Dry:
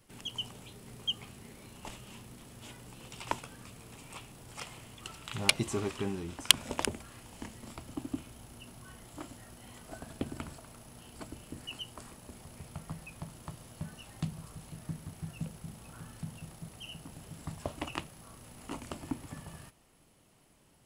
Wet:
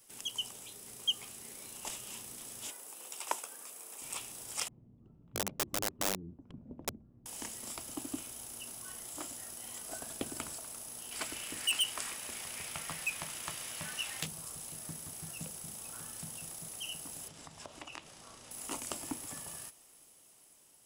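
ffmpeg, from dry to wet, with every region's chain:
-filter_complex "[0:a]asettb=1/sr,asplit=3[s0][s1][s2];[s0]atrim=end=2.704[s3];[s1]atrim=start=2.7:end=4.02,asetpts=PTS-STARTPTS,afade=t=in:d=0.004:c=qsin,afade=t=out:st=1.316:d=0.004:c=qsin,highpass=420,equalizer=f=3900:t=o:w=2.3:g=-7[s4];[s2]atrim=start=4.016[s5];[s3][s4]acrossfade=d=0.004:c1=hsin:c2=qsin[s6];[s6][s5]acrossfade=d=0.004:c1=qsin:c2=hsin,asettb=1/sr,asplit=3[s7][s8][s9];[s7]atrim=end=4.684[s10];[s8]atrim=start=4.68:end=7.26,asetpts=PTS-STARTPTS,afade=t=in:d=0.004:c=qsin,afade=t=out:st=2.576:d=0.004:c=qsin,lowpass=f=190:t=q:w=1.6,aeval=exprs='(mod(28.2*val(0)+1,2)-1)/28.2':c=same[s11];[s9]atrim=start=7.256[s12];[s10][s11]acrossfade=d=0.004:c1=hsin:c2=qsin[s13];[s13][s12]acrossfade=d=0.004:c1=qsin:c2=hsin,asettb=1/sr,asplit=3[s14][s15][s16];[s14]atrim=end=11.114[s17];[s15]atrim=start=11.11:end=14.26,asetpts=PTS-STARTPTS,afade=t=in:d=0.004:c=qsin,afade=t=out:st=3.146:d=0.004:c=qsin,equalizer=f=2200:t=o:w=1.9:g=13.5,asoftclip=type=hard:threshold=0.0299[s18];[s16]atrim=start=14.256[s19];[s17][s18]acrossfade=d=0.004:c1=hsin:c2=qsin[s20];[s20][s19]acrossfade=d=0.004:c1=qsin:c2=hsin,asettb=1/sr,asplit=3[s21][s22][s23];[s21]atrim=end=17.284[s24];[s22]atrim=start=17.28:end=18.51,asetpts=PTS-STARTPTS,afade=t=in:d=0.004:c=qsin,afade=t=out:st=1.226:d=0.004:c=qsin,lowpass=5300,acompressor=threshold=0.00631:ratio=4:attack=3.2:release=140:knee=1:detection=peak[s25];[s23]atrim=start=18.506[s26];[s24][s25]acrossfade=d=0.004:c1=hsin:c2=qsin[s27];[s27][s26]acrossfade=d=0.004:c1=qsin:c2=hsin,bass=f=250:g=-11,treble=f=4000:g=13,bandreject=f=4300:w=16,dynaudnorm=f=430:g=7:m=1.5,volume=0.708"

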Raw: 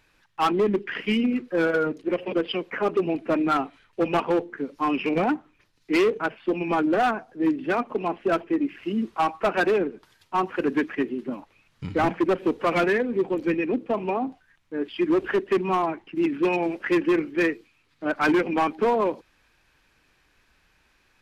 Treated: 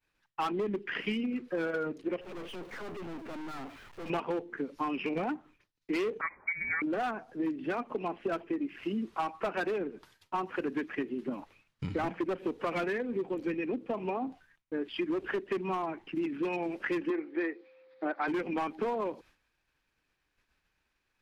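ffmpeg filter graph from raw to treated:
-filter_complex "[0:a]asettb=1/sr,asplit=3[s0][s1][s2];[s0]atrim=end=2.214[s3];[s1]atrim=start=2.21:end=4.1,asetpts=PTS-STARTPTS,afade=t=in:d=0.004:c=qsin,afade=t=out:st=1.886:d=0.004:c=qsin,aeval=exprs='val(0)+0.5*0.00668*sgn(val(0))':c=same,aeval=exprs='(tanh(100*val(0)+0.5)-tanh(0.5))/100':c=same,highshelf=f=4100:g=-12[s4];[s2]atrim=start=4.096[s5];[s3][s4]acrossfade=d=0.004:c1=hsin:c2=qsin[s6];[s6][s5]acrossfade=d=0.004:c1=qsin:c2=hsin,asettb=1/sr,asplit=3[s7][s8][s9];[s7]atrim=end=6.214[s10];[s8]atrim=start=6.21:end=6.82,asetpts=PTS-STARTPTS,afade=t=in:d=0.004:c=qsin,afade=t=out:st=0.606:d=0.004:c=qsin,highpass=290,lowpass=f=2200:t=q:w=0.5098,lowpass=f=2200:t=q:w=0.6013,lowpass=f=2200:t=q:w=0.9,lowpass=f=2200:t=q:w=2.563,afreqshift=-2600[s11];[s9]atrim=start=6.816[s12];[s10][s11]acrossfade=d=0.004:c1=hsin:c2=qsin[s13];[s13][s12]acrossfade=d=0.004:c1=qsin:c2=hsin,asettb=1/sr,asplit=3[s14][s15][s16];[s14]atrim=end=17.104[s17];[s15]atrim=start=17.1:end=18.28,asetpts=PTS-STARTPTS,afade=t=in:d=0.004:c=qsin,afade=t=out:st=1.176:d=0.004:c=qsin,aeval=exprs='val(0)+0.002*sin(2*PI*520*n/s)':c=same,highpass=330,equalizer=f=340:t=q:w=4:g=7,equalizer=f=780:t=q:w=4:g=7,equalizer=f=1900:t=q:w=4:g=4,equalizer=f=2900:t=q:w=4:g=-7,lowpass=f=4100:w=0.5412,lowpass=f=4100:w=1.3066[s18];[s16]atrim=start=18.276[s19];[s17][s18]acrossfade=d=0.004:c1=hsin:c2=qsin[s20];[s20][s19]acrossfade=d=0.004:c1=qsin:c2=hsin,acompressor=threshold=0.0282:ratio=5,agate=range=0.0224:threshold=0.00224:ratio=3:detection=peak"

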